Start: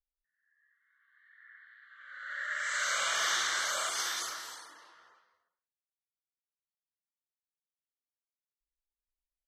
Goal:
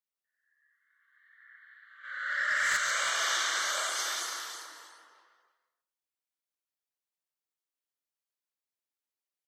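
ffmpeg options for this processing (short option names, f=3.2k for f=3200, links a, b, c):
-filter_complex "[0:a]highpass=f=250:w=0.5412,highpass=f=250:w=1.3066,asplit=3[a][b][c];[a]afade=t=out:st=2.03:d=0.02[d];[b]aeval=exprs='0.0668*sin(PI/2*1.58*val(0)/0.0668)':c=same,afade=t=in:st=2.03:d=0.02,afade=t=out:st=2.76:d=0.02[e];[c]afade=t=in:st=2.76:d=0.02[f];[d][e][f]amix=inputs=3:normalize=0,aecho=1:1:139|330:0.376|0.355"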